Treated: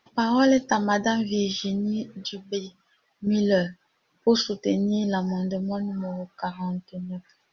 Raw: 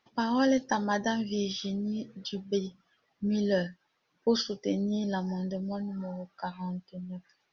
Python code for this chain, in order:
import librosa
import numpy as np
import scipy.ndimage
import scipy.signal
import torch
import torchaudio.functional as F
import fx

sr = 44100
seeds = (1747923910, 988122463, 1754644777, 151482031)

y = fx.low_shelf(x, sr, hz=470.0, db=-10.0, at=(2.26, 3.27))
y = y * 10.0 ** (6.0 / 20.0)